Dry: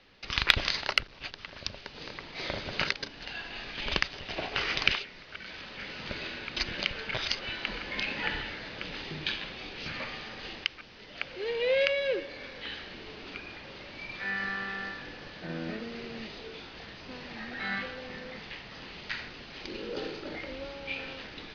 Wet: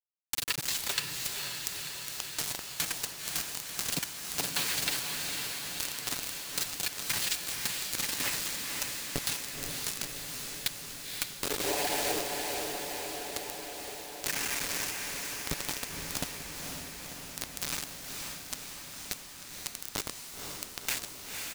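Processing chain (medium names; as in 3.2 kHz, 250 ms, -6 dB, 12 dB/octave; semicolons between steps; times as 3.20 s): rotary cabinet horn 0.8 Hz; noise-vocoded speech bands 8; comb 7 ms, depth 74%; bit crusher 5-bit; tone controls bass +3 dB, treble +8 dB; compression, threshold -35 dBFS, peak gain reduction 16 dB; echo that smears into a reverb 513 ms, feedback 72%, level -4 dB; trim +6 dB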